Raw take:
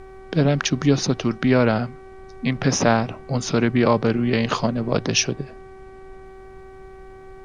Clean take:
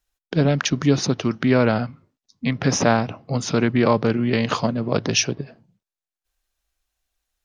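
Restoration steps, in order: de-hum 381.6 Hz, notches 6; noise reduction 30 dB, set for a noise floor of -42 dBFS

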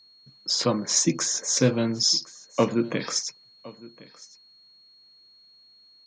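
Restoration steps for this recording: clip repair -10 dBFS; band-stop 4.3 kHz, Q 30; inverse comb 1062 ms -21 dB

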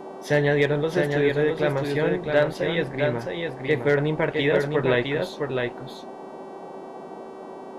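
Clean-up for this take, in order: clip repair -10.5 dBFS; de-hum 383.6 Hz, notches 30; noise print and reduce 30 dB; inverse comb 660 ms -4.5 dB

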